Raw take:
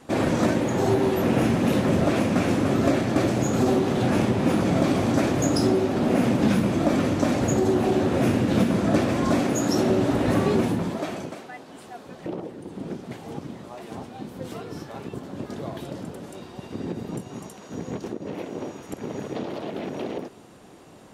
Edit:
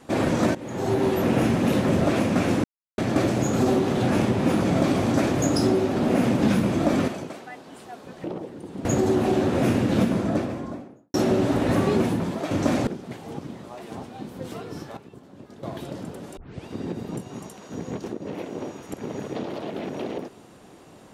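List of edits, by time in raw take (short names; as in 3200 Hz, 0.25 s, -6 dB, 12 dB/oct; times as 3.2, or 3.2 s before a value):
0.55–1.05 fade in, from -18.5 dB
2.64–2.98 mute
7.08–7.44 swap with 11.1–12.87
8.45–9.73 studio fade out
14.97–15.63 gain -11 dB
16.37 tape start 0.29 s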